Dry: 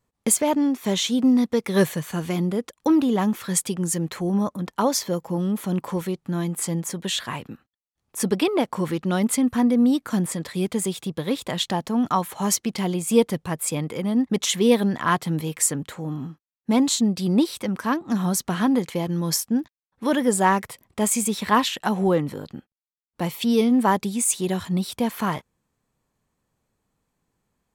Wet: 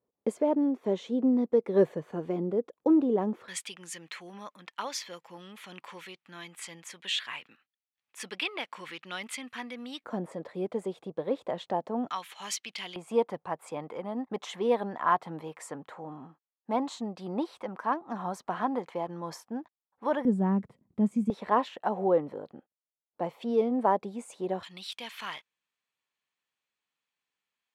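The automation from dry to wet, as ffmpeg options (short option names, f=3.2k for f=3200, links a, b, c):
-af "asetnsamples=n=441:p=0,asendcmd='3.48 bandpass f 2500;10.04 bandpass f 590;12.1 bandpass f 2800;12.96 bandpass f 820;20.25 bandpass f 200;21.3 bandpass f 610;24.63 bandpass f 2900',bandpass=f=450:t=q:w=1.7:csg=0"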